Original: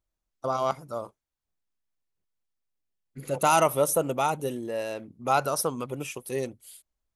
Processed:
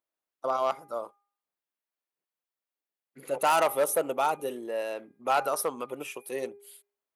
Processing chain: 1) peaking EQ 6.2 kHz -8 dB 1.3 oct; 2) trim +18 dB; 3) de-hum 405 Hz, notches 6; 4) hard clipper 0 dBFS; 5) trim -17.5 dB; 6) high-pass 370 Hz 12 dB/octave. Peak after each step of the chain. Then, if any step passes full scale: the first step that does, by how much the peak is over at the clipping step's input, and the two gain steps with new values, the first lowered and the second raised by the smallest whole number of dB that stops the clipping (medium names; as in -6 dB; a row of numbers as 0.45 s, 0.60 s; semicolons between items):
-10.0 dBFS, +8.0 dBFS, +8.0 dBFS, 0.0 dBFS, -17.5 dBFS, -12.5 dBFS; step 2, 8.0 dB; step 2 +10 dB, step 5 -9.5 dB